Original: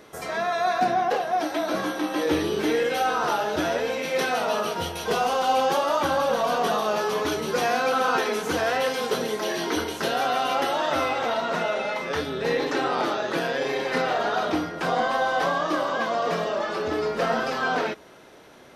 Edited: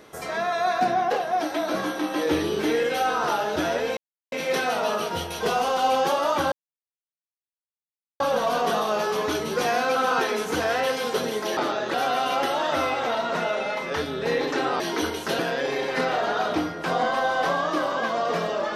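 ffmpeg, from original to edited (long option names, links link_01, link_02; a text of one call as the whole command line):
ffmpeg -i in.wav -filter_complex "[0:a]asplit=7[link_01][link_02][link_03][link_04][link_05][link_06][link_07];[link_01]atrim=end=3.97,asetpts=PTS-STARTPTS,afade=type=out:start_time=3.966:duration=0.004:curve=hsin,apad=pad_dur=0.35[link_08];[link_02]atrim=start=3.97:end=6.17,asetpts=PTS-STARTPTS,afade=type=in:duration=0.004:curve=hsin,afade=type=out:start_time=2.196:duration=0.004:curve=hsin,apad=pad_dur=1.68[link_09];[link_03]atrim=start=6.17:end=9.542,asetpts=PTS-STARTPTS,afade=type=in:duration=0.004:curve=hsin[link_10];[link_04]atrim=start=12.988:end=13.362[link_11];[link_05]atrim=start=10.128:end=12.992[link_12];[link_06]atrim=start=9.538:end=10.132[link_13];[link_07]atrim=start=13.358[link_14];[link_08][link_09][link_10]concat=n=3:v=0:a=1[link_15];[link_15][link_11]acrossfade=duration=0.004:curve1=hsin:curve2=hsin[link_16];[link_16][link_12]acrossfade=duration=0.004:curve1=hsin:curve2=hsin[link_17];[link_17][link_13]acrossfade=duration=0.004:curve1=hsin:curve2=hsin[link_18];[link_18][link_14]acrossfade=duration=0.004:curve1=hsin:curve2=hsin" out.wav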